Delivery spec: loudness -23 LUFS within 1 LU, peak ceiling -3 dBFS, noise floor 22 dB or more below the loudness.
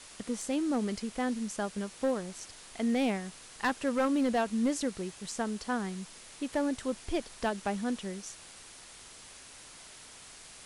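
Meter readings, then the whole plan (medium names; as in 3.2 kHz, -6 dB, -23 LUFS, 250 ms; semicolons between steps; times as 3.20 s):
clipped samples 0.6%; clipping level -22.5 dBFS; noise floor -51 dBFS; noise floor target -55 dBFS; loudness -33.0 LUFS; peak level -22.5 dBFS; loudness target -23.0 LUFS
-> clip repair -22.5 dBFS; noise reduction 6 dB, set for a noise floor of -51 dBFS; trim +10 dB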